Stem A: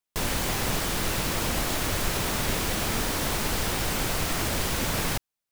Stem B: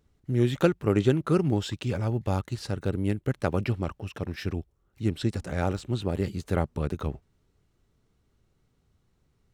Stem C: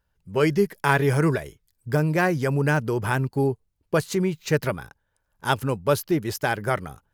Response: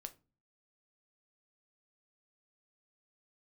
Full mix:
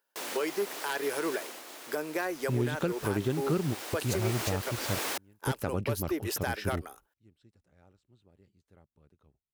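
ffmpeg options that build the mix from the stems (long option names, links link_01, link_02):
-filter_complex "[0:a]volume=6dB,afade=type=out:start_time=1.33:duration=0.3:silence=0.354813,afade=type=in:start_time=2.53:duration=0.59:silence=0.473151,afade=type=in:start_time=4:duration=0.53:silence=0.421697[link_01];[1:a]adelay=2200,volume=-2.5dB[link_02];[2:a]highshelf=frequency=8300:gain=9.5,aeval=exprs='0.251*(abs(mod(val(0)/0.251+3,4)-2)-1)':channel_layout=same,volume=-2.5dB,asplit=2[link_03][link_04];[link_04]apad=whole_len=517665[link_05];[link_02][link_05]sidechaingate=range=-32dB:threshold=-52dB:ratio=16:detection=peak[link_06];[link_01][link_03]amix=inputs=2:normalize=0,highpass=frequency=310:width=0.5412,highpass=frequency=310:width=1.3066,alimiter=limit=-21.5dB:level=0:latency=1:release=330,volume=0dB[link_07];[link_06][link_07]amix=inputs=2:normalize=0,alimiter=limit=-18.5dB:level=0:latency=1:release=315"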